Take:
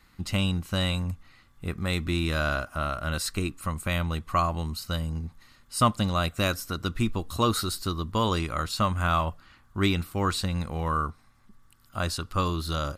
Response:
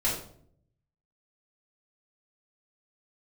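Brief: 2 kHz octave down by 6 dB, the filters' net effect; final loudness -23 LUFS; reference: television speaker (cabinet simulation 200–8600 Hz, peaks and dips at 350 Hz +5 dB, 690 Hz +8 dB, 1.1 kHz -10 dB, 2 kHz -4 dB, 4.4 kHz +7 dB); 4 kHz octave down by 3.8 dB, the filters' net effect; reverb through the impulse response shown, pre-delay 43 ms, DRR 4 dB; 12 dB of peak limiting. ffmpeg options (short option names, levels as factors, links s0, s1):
-filter_complex "[0:a]equalizer=f=2000:t=o:g=-4.5,equalizer=f=4000:t=o:g=-6.5,alimiter=limit=0.0841:level=0:latency=1,asplit=2[s0][s1];[1:a]atrim=start_sample=2205,adelay=43[s2];[s1][s2]afir=irnorm=-1:irlink=0,volume=0.211[s3];[s0][s3]amix=inputs=2:normalize=0,highpass=f=200:w=0.5412,highpass=f=200:w=1.3066,equalizer=f=350:t=q:w=4:g=5,equalizer=f=690:t=q:w=4:g=8,equalizer=f=1100:t=q:w=4:g=-10,equalizer=f=2000:t=q:w=4:g=-4,equalizer=f=4400:t=q:w=4:g=7,lowpass=f=8600:w=0.5412,lowpass=f=8600:w=1.3066,volume=3.35"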